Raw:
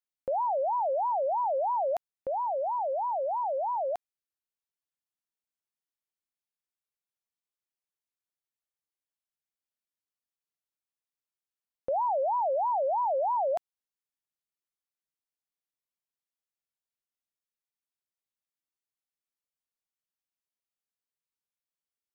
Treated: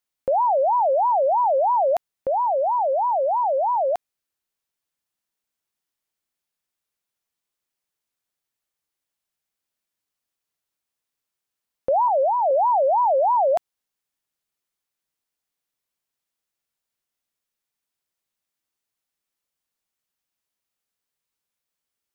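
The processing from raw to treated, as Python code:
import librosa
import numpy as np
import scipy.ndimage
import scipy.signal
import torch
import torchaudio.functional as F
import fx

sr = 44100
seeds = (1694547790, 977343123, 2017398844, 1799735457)

y = fx.lowpass(x, sr, hz=1000.0, slope=12, at=(12.08, 12.51))
y = y * 10.0 ** (9.0 / 20.0)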